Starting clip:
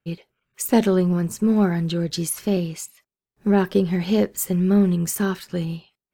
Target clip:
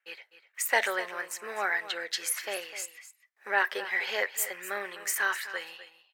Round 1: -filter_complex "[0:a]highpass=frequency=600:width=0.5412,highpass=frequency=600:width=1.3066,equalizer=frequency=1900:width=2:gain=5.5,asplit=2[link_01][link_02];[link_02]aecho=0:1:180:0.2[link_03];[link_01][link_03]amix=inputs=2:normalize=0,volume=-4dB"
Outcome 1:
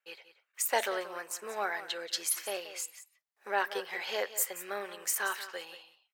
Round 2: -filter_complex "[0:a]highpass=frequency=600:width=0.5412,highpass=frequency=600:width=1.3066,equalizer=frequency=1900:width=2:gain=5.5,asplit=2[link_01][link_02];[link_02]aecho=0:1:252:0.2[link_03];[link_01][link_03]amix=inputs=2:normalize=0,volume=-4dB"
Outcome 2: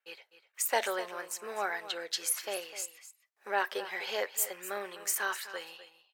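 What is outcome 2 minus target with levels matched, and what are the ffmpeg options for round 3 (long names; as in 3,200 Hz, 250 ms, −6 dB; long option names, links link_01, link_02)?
2,000 Hz band −4.5 dB
-filter_complex "[0:a]highpass=frequency=600:width=0.5412,highpass=frequency=600:width=1.3066,equalizer=frequency=1900:width=2:gain=16,asplit=2[link_01][link_02];[link_02]aecho=0:1:252:0.2[link_03];[link_01][link_03]amix=inputs=2:normalize=0,volume=-4dB"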